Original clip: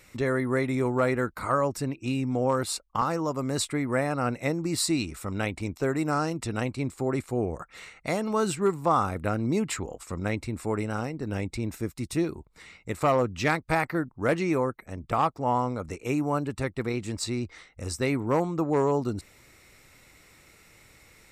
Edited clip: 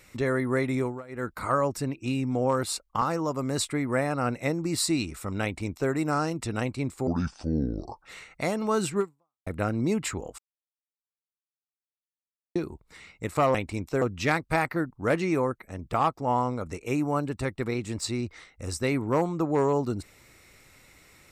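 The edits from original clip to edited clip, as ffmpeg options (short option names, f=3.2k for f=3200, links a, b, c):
-filter_complex "[0:a]asplit=10[a][b][c][d][e][f][g][h][i][j];[a]atrim=end=1.03,asetpts=PTS-STARTPTS,afade=t=out:st=0.78:d=0.25:silence=0.0707946[k];[b]atrim=start=1.03:end=1.08,asetpts=PTS-STARTPTS,volume=-23dB[l];[c]atrim=start=1.08:end=7.074,asetpts=PTS-STARTPTS,afade=t=in:d=0.25:silence=0.0707946[m];[d]atrim=start=7.07:end=7.71,asetpts=PTS-STARTPTS,asetrate=28665,aresample=44100[n];[e]atrim=start=7.706:end=9.12,asetpts=PTS-STARTPTS,afade=t=out:st=0.944:d=0.47:c=exp[o];[f]atrim=start=9.12:end=10.04,asetpts=PTS-STARTPTS,afade=t=in:d=0.004:c=hsin,afade=t=out:st=0.916:d=0.004:c=hsin[p];[g]atrim=start=10.04:end=12.21,asetpts=PTS-STARTPTS,volume=0[q];[h]atrim=start=12.21:end=13.202,asetpts=PTS-STARTPTS,afade=t=in:d=0.004:c=hsin[r];[i]atrim=start=5.428:end=5.902[s];[j]atrim=start=13.198[t];[k][l][m]concat=n=3:v=0:a=1[u];[u][n]acrossfade=d=0.004:c1=hsin:c2=hsin[v];[o][p][q][r]concat=n=4:v=0:a=1[w];[v][w]acrossfade=d=0.004:c1=hsin:c2=hsin[x];[x][s]acrossfade=d=0.004:c1=hsin:c2=hsin[y];[y][t]acrossfade=d=0.004:c1=hsin:c2=hsin"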